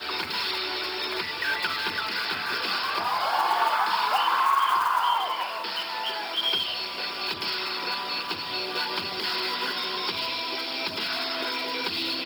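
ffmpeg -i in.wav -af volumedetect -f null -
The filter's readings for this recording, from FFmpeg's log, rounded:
mean_volume: -27.7 dB
max_volume: -10.2 dB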